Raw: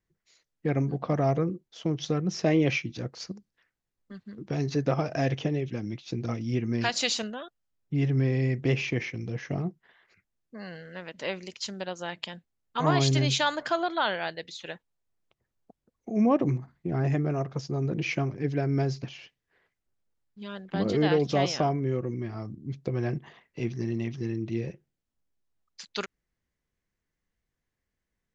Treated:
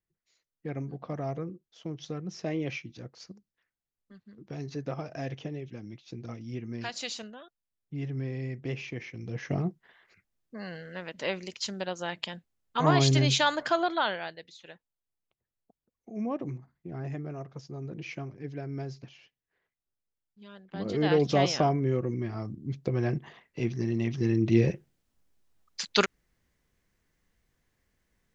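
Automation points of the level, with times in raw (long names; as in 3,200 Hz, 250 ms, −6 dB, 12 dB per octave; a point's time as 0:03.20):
0:09.03 −9 dB
0:09.49 +1 dB
0:13.92 +1 dB
0:14.50 −10 dB
0:20.69 −10 dB
0:21.19 +1 dB
0:23.93 +1 dB
0:24.61 +9.5 dB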